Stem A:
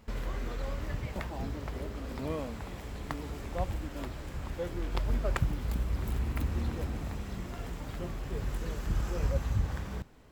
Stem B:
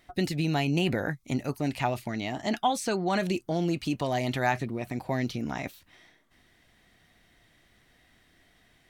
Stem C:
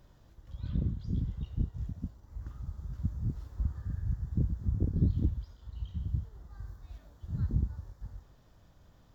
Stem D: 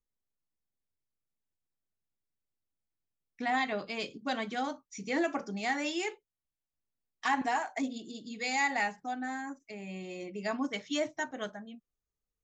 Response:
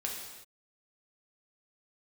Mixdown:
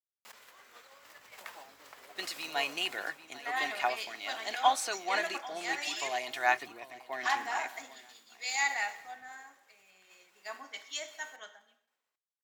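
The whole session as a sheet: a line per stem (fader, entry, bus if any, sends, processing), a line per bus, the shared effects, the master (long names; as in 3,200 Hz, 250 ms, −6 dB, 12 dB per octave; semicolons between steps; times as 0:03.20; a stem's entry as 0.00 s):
−13.0 dB, 0.25 s, send −16 dB, echo send −13 dB, envelope flattener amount 100%; automatic ducking −23 dB, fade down 0.80 s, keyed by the fourth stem
−1.5 dB, 2.00 s, no send, echo send −12.5 dB, high-shelf EQ 6,900 Hz −8.5 dB; comb filter 2.8 ms, depth 38%
−11.0 dB, 1.65 s, no send, no echo send, no processing
−5.5 dB, 0.00 s, send −5 dB, no echo send, no processing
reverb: on, pre-delay 3 ms
echo: repeating echo 795 ms, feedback 33%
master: high-pass filter 920 Hz 12 dB per octave; high-shelf EQ 6,900 Hz +6 dB; multiband upward and downward expander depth 70%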